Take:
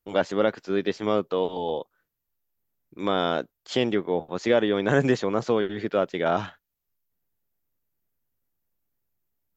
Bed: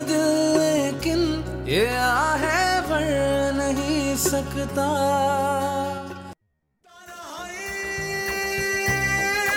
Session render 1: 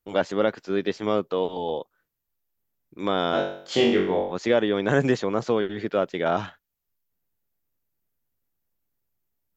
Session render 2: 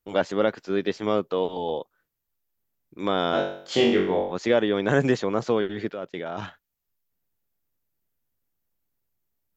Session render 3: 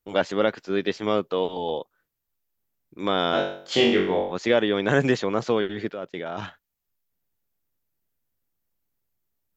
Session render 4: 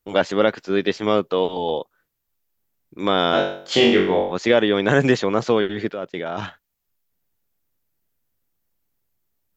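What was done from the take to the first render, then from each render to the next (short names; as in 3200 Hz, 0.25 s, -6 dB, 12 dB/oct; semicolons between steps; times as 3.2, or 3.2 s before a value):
3.31–4.32 flutter echo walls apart 3.6 m, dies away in 0.56 s
5.91–6.42 level quantiser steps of 16 dB
dynamic EQ 2900 Hz, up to +4 dB, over -39 dBFS, Q 0.71
gain +4.5 dB; limiter -3 dBFS, peak gain reduction 2 dB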